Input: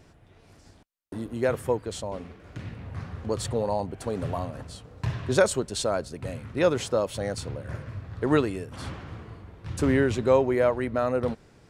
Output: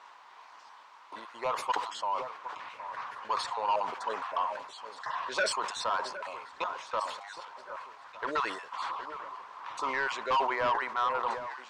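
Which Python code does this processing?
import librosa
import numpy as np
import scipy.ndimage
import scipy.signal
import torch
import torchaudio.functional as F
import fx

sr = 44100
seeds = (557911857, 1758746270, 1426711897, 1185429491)

y = fx.spec_dropout(x, sr, seeds[0], share_pct=23)
y = fx.high_shelf(y, sr, hz=3800.0, db=7.5)
y = fx.level_steps(y, sr, step_db=24, at=(6.49, 8.22))
y = fx.dmg_noise_colour(y, sr, seeds[1], colour='pink', level_db=-55.0)
y = fx.highpass_res(y, sr, hz=1000.0, q=5.8)
y = 10.0 ** (-22.5 / 20.0) * np.tanh(y / 10.0 ** (-22.5 / 20.0))
y = fx.air_absorb(y, sr, metres=150.0)
y = fx.echo_alternate(y, sr, ms=764, hz=1600.0, feedback_pct=66, wet_db=-11.5)
y = fx.sustainer(y, sr, db_per_s=73.0)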